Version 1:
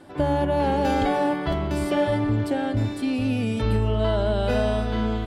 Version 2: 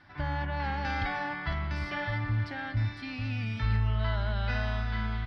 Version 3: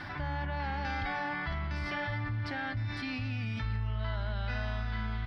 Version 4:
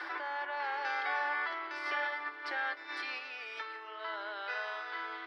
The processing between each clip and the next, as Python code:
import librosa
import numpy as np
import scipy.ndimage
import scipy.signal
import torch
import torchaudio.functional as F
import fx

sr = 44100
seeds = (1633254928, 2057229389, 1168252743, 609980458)

y1 = fx.curve_eq(x, sr, hz=(110.0, 470.0, 760.0, 2000.0, 2900.0, 5300.0, 7600.0, 12000.0), db=(0, -21, -7, 6, -4, 0, -24, -28))
y1 = y1 * librosa.db_to_amplitude(-3.5)
y2 = fx.env_flatten(y1, sr, amount_pct=70)
y2 = y2 * librosa.db_to_amplitude(-7.5)
y3 = scipy.signal.sosfilt(scipy.signal.cheby1(6, 6, 320.0, 'highpass', fs=sr, output='sos'), y2)
y3 = y3 * librosa.db_to_amplitude(4.5)